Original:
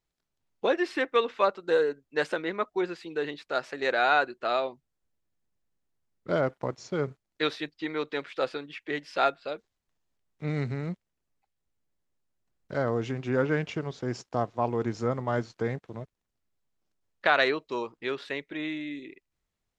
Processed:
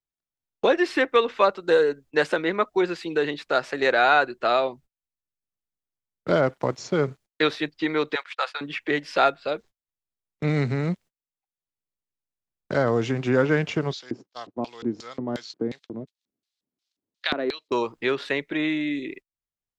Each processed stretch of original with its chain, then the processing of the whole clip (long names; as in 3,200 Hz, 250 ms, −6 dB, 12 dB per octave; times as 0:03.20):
0:08.15–0:08.61: high-pass filter 820 Hz 24 dB per octave + noise gate −47 dBFS, range −38 dB
0:13.93–0:17.72: upward compression, threshold −38 dBFS + auto-filter band-pass square 2.8 Hz 280–4,000 Hz + high-shelf EQ 3,500 Hz +7.5 dB
whole clip: noise gate −52 dBFS, range −32 dB; multiband upward and downward compressor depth 40%; level +6.5 dB